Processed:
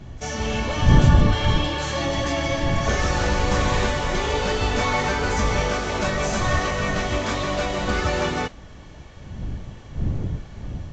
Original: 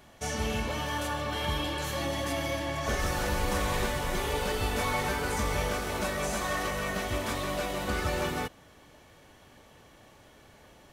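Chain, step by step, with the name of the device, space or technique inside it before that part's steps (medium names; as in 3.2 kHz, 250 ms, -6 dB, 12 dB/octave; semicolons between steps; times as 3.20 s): smartphone video outdoors (wind noise 110 Hz -32 dBFS; level rider gain up to 4 dB; trim +3.5 dB; AAC 48 kbps 16 kHz)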